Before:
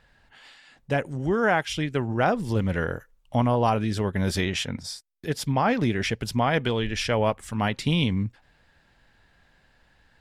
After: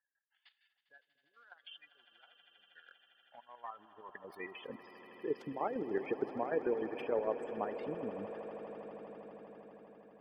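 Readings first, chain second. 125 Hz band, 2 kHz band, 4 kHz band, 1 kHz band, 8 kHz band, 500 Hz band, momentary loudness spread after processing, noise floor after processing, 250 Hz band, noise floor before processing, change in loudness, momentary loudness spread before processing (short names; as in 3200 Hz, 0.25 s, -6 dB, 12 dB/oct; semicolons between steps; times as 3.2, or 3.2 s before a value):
-31.0 dB, -20.5 dB, -25.5 dB, -16.5 dB, under -35 dB, -11.0 dB, 19 LU, -83 dBFS, -17.5 dB, -63 dBFS, -14.5 dB, 8 LU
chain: tracing distortion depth 0.26 ms; notch 3900 Hz, Q 15; spectral gate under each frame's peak -15 dB strong; low-pass opened by the level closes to 910 Hz, open at -22.5 dBFS; high shelf 5200 Hz -7 dB; level quantiser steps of 10 dB; transient shaper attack +5 dB, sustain -1 dB; compressor 3:1, threshold -42 dBFS, peak gain reduction 19.5 dB; high-pass sweep 3800 Hz -> 390 Hz, 2.9–4.82; chopper 6.6 Hz, depth 60%, duty 45%; swelling echo 80 ms, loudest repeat 8, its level -17.5 dB; gain +6 dB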